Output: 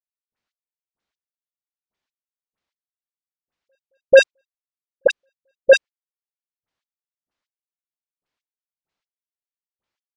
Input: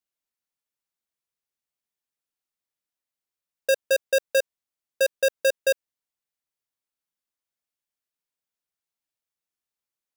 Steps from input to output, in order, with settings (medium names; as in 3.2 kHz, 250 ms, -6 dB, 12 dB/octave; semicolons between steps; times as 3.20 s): in parallel at +2 dB: compression, threshold -27 dBFS, peak gain reduction 7.5 dB; on the sum: waveshaping leveller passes 2; trance gate "..x...x..." 95 bpm -60 dB; Gaussian low-pass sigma 1.7 samples; phase dispersion highs, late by 51 ms, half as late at 1.3 kHz; trim +8.5 dB